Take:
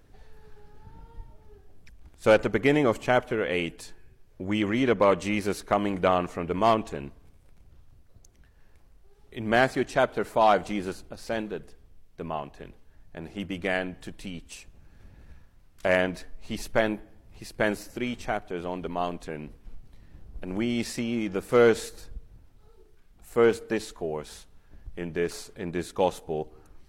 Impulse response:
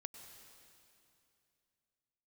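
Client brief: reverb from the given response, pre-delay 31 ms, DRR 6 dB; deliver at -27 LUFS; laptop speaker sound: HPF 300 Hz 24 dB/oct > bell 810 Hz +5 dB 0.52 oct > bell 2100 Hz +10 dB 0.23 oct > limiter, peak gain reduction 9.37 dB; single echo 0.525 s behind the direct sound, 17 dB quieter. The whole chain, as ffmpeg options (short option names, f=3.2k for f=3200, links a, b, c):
-filter_complex "[0:a]aecho=1:1:525:0.141,asplit=2[a][b];[1:a]atrim=start_sample=2205,adelay=31[c];[b][c]afir=irnorm=-1:irlink=0,volume=-1.5dB[d];[a][d]amix=inputs=2:normalize=0,highpass=f=300:w=0.5412,highpass=f=300:w=1.3066,equalizer=f=810:t=o:w=0.52:g=5,equalizer=f=2.1k:t=o:w=0.23:g=10,volume=1.5dB,alimiter=limit=-12.5dB:level=0:latency=1"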